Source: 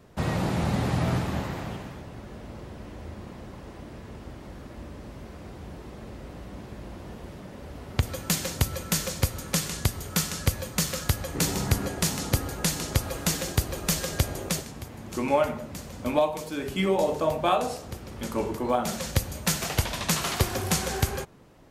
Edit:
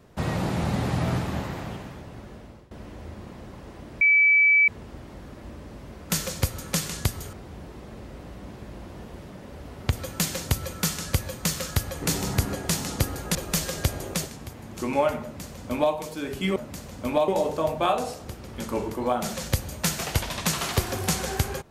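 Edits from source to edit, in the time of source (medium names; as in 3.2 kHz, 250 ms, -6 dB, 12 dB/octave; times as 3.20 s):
2.12–2.71 s: fade out equal-power, to -18.5 dB
4.01 s: add tone 2.3 kHz -14.5 dBFS 0.67 s
8.90–10.13 s: move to 5.43 s
12.68–13.70 s: delete
15.57–16.29 s: copy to 16.91 s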